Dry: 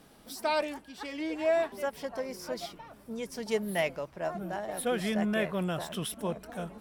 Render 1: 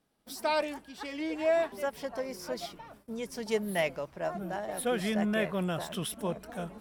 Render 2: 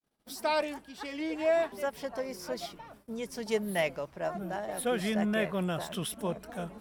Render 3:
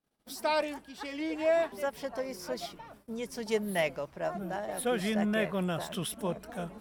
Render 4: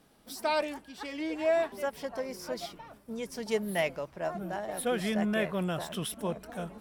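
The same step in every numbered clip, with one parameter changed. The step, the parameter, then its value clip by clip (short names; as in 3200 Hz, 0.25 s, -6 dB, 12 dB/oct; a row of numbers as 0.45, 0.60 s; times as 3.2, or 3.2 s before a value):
gate, range: -19, -56, -32, -6 dB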